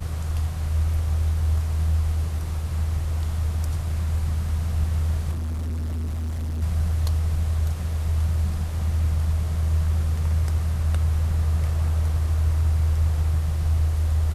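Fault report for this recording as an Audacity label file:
5.310000	6.630000	clipped -25 dBFS

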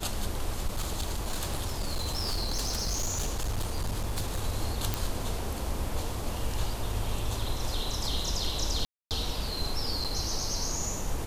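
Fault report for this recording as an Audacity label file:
0.670000	4.450000	clipped -26 dBFS
4.940000	4.940000	pop
8.850000	9.110000	dropout 258 ms
10.040000	10.050000	dropout 6.9 ms

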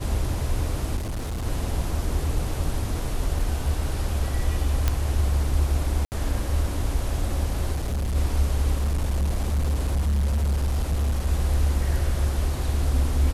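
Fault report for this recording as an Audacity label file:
0.960000	1.460000	clipped -26 dBFS
3.390000	3.390000	dropout 2.7 ms
4.880000	4.880000	pop -8 dBFS
6.050000	6.120000	dropout 69 ms
7.750000	8.160000	clipped -22.5 dBFS
8.760000	11.270000	clipped -19.5 dBFS

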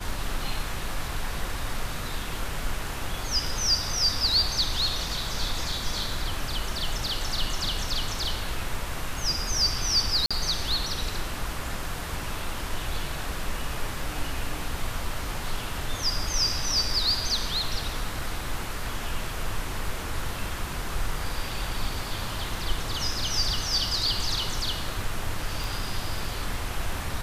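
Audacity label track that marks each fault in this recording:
10.260000	10.310000	dropout 46 ms
25.640000	25.640000	pop

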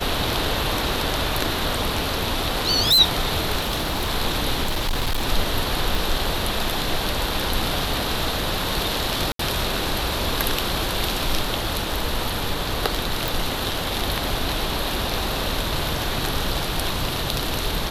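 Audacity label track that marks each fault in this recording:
2.560000	3.000000	clipped -13 dBFS
3.580000	4.100000	clipped -19 dBFS
4.630000	5.280000	clipped -18.5 dBFS
5.950000	5.950000	pop
9.320000	9.390000	dropout 73 ms
13.280000	13.280000	pop

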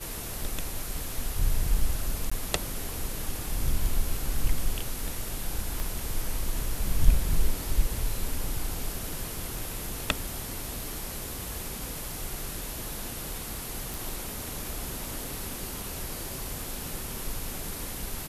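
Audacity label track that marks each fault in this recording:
2.300000	2.310000	dropout 15 ms
5.800000	5.800000	pop -18 dBFS
13.940000	13.940000	pop

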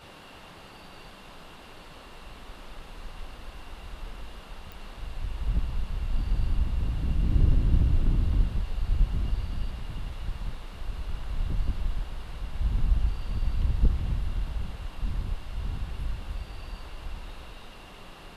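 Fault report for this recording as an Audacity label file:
4.720000	4.720000	pop

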